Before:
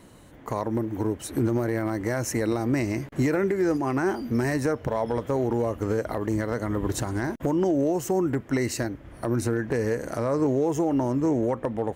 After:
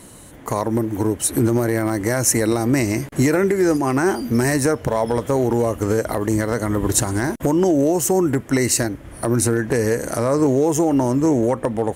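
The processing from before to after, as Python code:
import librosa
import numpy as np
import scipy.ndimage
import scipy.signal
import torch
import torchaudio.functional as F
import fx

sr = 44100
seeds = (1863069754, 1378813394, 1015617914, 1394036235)

y = fx.peak_eq(x, sr, hz=10000.0, db=12.5, octaves=1.3)
y = y * librosa.db_to_amplitude(6.5)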